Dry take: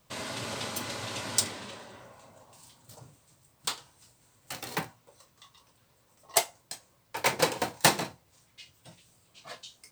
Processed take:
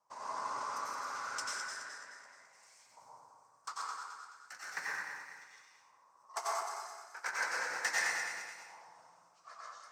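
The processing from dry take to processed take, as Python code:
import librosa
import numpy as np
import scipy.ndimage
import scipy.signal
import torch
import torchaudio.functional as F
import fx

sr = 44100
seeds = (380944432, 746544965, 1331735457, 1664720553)

y = fx.reverse_delay_fb(x, sr, ms=107, feedback_pct=64, wet_db=-6.0)
y = fx.high_shelf_res(y, sr, hz=4400.0, db=9.0, q=3.0)
y = fx.rider(y, sr, range_db=4, speed_s=2.0)
y = 10.0 ** (-4.5 / 20.0) * np.tanh(y / 10.0 ** (-4.5 / 20.0))
y = fx.filter_lfo_bandpass(y, sr, shape='saw_up', hz=0.35, low_hz=930.0, high_hz=2300.0, q=4.8)
y = fx.rev_plate(y, sr, seeds[0], rt60_s=1.3, hf_ratio=0.5, predelay_ms=80, drr_db=-6.5)
y = fx.hpss(y, sr, part='percussive', gain_db=4)
y = F.gain(torch.from_numpy(y), -5.5).numpy()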